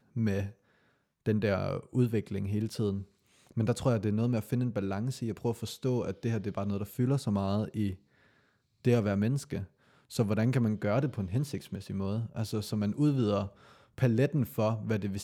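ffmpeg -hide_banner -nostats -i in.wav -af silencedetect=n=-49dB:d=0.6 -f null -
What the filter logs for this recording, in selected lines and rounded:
silence_start: 0.52
silence_end: 1.26 | silence_duration: 0.74
silence_start: 7.96
silence_end: 8.85 | silence_duration: 0.88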